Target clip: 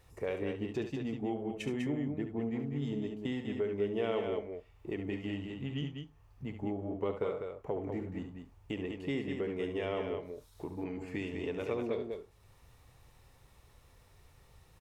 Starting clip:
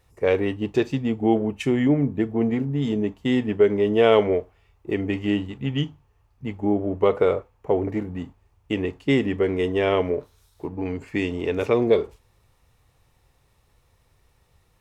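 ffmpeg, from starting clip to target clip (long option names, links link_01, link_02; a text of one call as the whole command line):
ffmpeg -i in.wav -filter_complex "[0:a]acompressor=threshold=-46dB:ratio=2,asplit=2[link_01][link_02];[link_02]aecho=0:1:69.97|198.3:0.355|0.501[link_03];[link_01][link_03]amix=inputs=2:normalize=0" out.wav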